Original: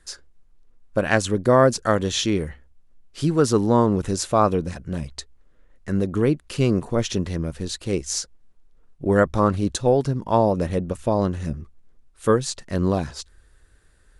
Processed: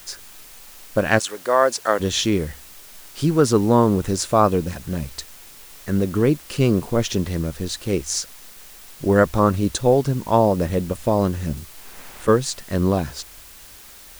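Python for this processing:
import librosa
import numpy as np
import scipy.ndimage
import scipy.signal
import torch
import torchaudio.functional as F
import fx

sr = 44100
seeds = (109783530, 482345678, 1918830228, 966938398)

y = fx.highpass(x, sr, hz=fx.line((1.18, 930.0), (1.99, 380.0)), slope=12, at=(1.18, 1.99), fade=0.02)
y = fx.dmg_noise_colour(y, sr, seeds[0], colour='white', level_db=-46.0)
y = fx.band_squash(y, sr, depth_pct=100, at=(11.57, 12.28))
y = y * 10.0 ** (2.0 / 20.0)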